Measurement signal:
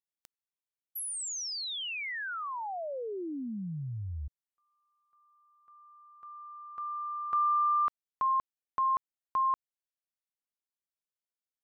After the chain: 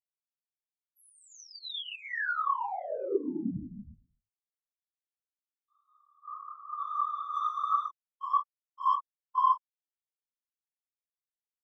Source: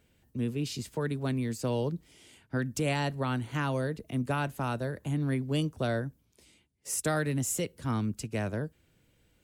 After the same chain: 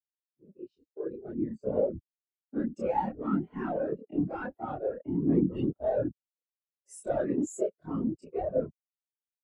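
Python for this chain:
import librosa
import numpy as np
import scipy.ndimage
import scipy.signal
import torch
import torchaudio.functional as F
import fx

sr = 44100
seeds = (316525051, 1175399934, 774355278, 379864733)

y = fx.fade_in_head(x, sr, length_s=2.83)
y = scipy.signal.sosfilt(scipy.signal.butter(2, 310.0, 'highpass', fs=sr, output='sos'), y)
y = fx.high_shelf(y, sr, hz=4300.0, db=-7.5)
y = fx.leveller(y, sr, passes=5)
y = fx.whisperise(y, sr, seeds[0])
y = fx.chorus_voices(y, sr, voices=2, hz=1.4, base_ms=28, depth_ms=3.0, mix_pct=55)
y = fx.spectral_expand(y, sr, expansion=2.5)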